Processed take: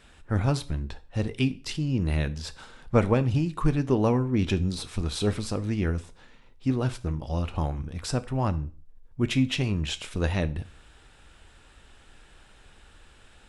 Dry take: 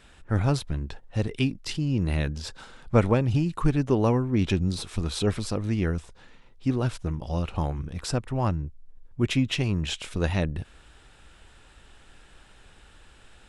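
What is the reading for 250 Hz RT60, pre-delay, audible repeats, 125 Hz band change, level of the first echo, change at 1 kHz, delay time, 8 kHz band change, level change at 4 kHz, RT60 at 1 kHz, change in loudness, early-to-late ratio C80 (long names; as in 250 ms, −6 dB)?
0.40 s, 4 ms, no echo audible, −1.0 dB, no echo audible, −0.5 dB, no echo audible, −1.0 dB, −0.5 dB, 0.40 s, −0.5 dB, 23.5 dB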